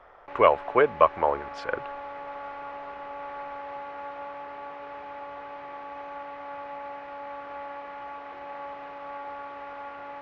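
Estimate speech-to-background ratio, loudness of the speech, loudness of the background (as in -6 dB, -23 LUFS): 15.0 dB, -24.0 LUFS, -39.0 LUFS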